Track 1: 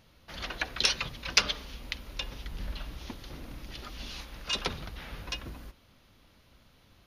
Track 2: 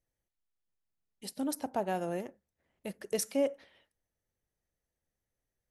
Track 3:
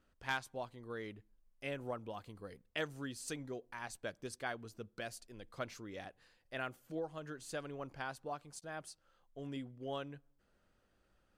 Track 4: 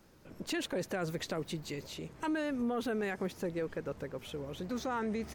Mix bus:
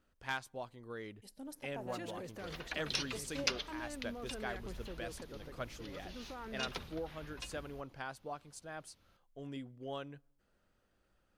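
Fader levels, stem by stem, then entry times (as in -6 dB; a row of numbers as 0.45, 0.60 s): -10.5, -14.0, -1.0, -12.0 dB; 2.10, 0.00, 0.00, 1.45 s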